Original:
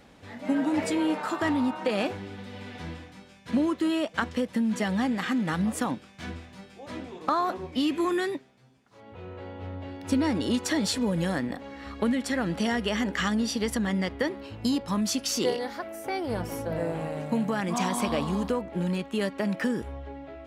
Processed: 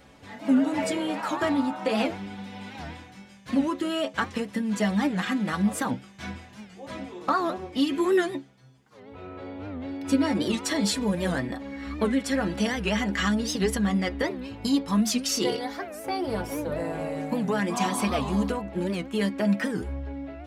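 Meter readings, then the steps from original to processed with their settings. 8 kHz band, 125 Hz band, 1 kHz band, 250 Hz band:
+1.5 dB, +1.0 dB, +1.0 dB, +1.5 dB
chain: metallic resonator 65 Hz, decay 0.22 s, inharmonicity 0.008; record warp 78 rpm, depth 160 cents; gain +8 dB

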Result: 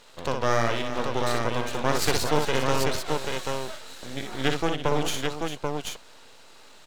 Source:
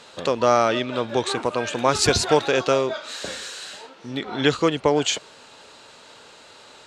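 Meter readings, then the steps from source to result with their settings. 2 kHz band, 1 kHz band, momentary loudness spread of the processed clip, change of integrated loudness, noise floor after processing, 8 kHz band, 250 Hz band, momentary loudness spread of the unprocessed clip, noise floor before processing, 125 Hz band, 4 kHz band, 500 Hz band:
-2.5 dB, -4.0 dB, 11 LU, -5.5 dB, -49 dBFS, -5.0 dB, -4.5 dB, 14 LU, -48 dBFS, 0.0 dB, -5.0 dB, -6.0 dB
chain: half-wave rectifier; on a send: tapped delay 60/400/786 ms -5.5/-11/-4 dB; on the sum: gain -3.5 dB

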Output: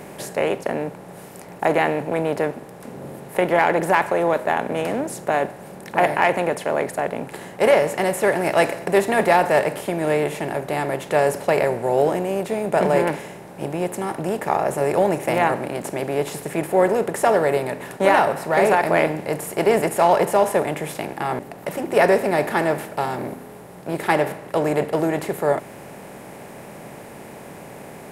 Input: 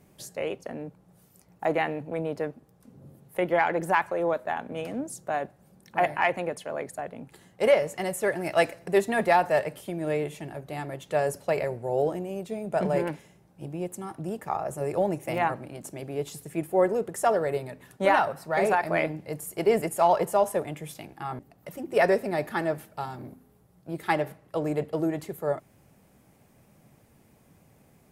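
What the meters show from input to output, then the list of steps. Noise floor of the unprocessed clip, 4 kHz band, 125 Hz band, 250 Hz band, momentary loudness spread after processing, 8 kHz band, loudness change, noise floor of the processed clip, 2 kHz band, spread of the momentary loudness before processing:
-60 dBFS, +7.5 dB, +6.5 dB, +7.0 dB, 21 LU, +7.5 dB, +7.0 dB, -40 dBFS, +7.0 dB, 15 LU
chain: per-bin compression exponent 0.6; gain +2.5 dB

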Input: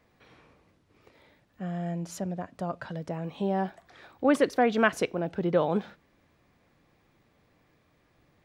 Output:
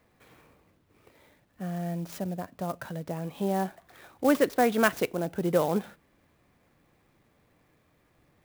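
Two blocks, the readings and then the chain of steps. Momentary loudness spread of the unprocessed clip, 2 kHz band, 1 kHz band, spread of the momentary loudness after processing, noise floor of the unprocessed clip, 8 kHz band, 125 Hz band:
12 LU, -0.5 dB, 0.0 dB, 12 LU, -67 dBFS, +3.5 dB, 0.0 dB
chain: clock jitter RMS 0.032 ms

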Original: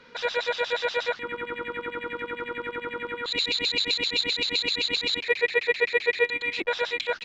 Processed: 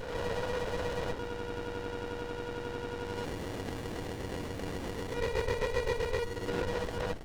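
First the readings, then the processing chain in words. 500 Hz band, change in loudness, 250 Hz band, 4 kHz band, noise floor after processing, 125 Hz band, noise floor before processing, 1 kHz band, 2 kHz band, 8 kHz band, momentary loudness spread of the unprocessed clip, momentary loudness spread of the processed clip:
-5.0 dB, -10.0 dB, +0.5 dB, -19.0 dB, -40 dBFS, +12.0 dB, -42 dBFS, -5.5 dB, -14.5 dB, n/a, 9 LU, 6 LU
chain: spectral swells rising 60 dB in 1.23 s; low shelf 450 Hz -11.5 dB; limiter -14.5 dBFS, peak gain reduction 6.5 dB; air absorption 460 m; running maximum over 33 samples; gain +1 dB

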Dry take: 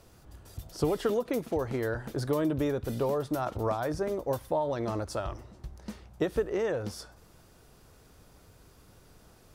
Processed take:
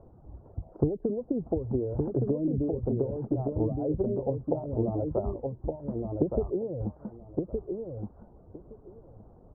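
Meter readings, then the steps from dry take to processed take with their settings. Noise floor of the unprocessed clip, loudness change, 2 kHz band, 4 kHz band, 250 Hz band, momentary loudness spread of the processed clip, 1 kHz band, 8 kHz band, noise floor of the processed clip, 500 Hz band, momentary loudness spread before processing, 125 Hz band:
-58 dBFS, 0.0 dB, under -30 dB, under -35 dB, +3.5 dB, 15 LU, -7.5 dB, under -30 dB, -55 dBFS, 0.0 dB, 16 LU, +5.0 dB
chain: treble ducked by the level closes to 300 Hz, closed at -26 dBFS; inverse Chebyshev low-pass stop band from 2900 Hz, stop band 60 dB; reverb removal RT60 0.78 s; on a send: feedback echo 1.167 s, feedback 16%, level -4 dB; on the sum: gain +5 dB

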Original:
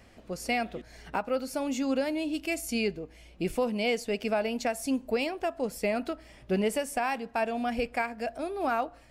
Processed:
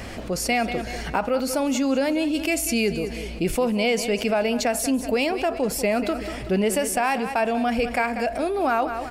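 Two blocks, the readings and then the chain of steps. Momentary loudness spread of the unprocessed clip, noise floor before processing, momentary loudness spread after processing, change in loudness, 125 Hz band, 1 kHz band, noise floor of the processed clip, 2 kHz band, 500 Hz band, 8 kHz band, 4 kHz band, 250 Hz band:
7 LU, -54 dBFS, 5 LU, +7.0 dB, +8.5 dB, +7.0 dB, -33 dBFS, +7.0 dB, +7.0 dB, +12.0 dB, +8.0 dB, +7.5 dB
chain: on a send: feedback echo 0.19 s, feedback 37%, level -16 dB; on the sum: fast leveller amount 50%; gain +4.5 dB

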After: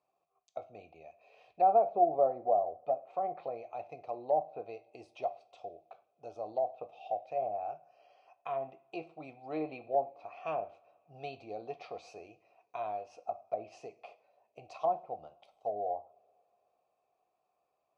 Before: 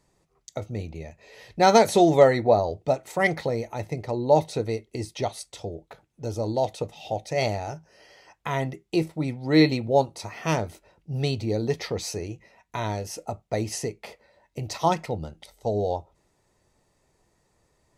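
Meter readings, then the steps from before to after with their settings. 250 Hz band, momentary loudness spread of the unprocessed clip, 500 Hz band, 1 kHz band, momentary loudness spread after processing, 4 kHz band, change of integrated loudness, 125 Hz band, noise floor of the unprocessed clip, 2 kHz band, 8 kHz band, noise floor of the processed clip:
-21.0 dB, 19 LU, -10.0 dB, -5.5 dB, 20 LU, -26.5 dB, -9.5 dB, -29.0 dB, -69 dBFS, -22.0 dB, under -30 dB, -81 dBFS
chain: vowel filter a; treble ducked by the level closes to 720 Hz, closed at -29 dBFS; two-slope reverb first 0.45 s, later 3.5 s, from -27 dB, DRR 11.5 dB

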